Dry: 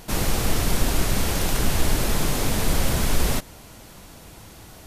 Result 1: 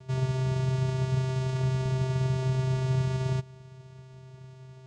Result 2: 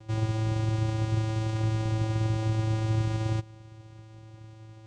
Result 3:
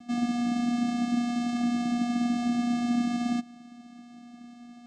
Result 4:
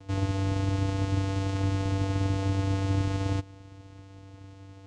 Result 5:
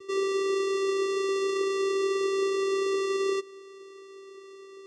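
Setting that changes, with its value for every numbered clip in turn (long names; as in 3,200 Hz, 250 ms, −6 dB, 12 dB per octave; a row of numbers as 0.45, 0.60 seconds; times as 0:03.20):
channel vocoder, frequency: 130, 110, 240, 97, 390 Hertz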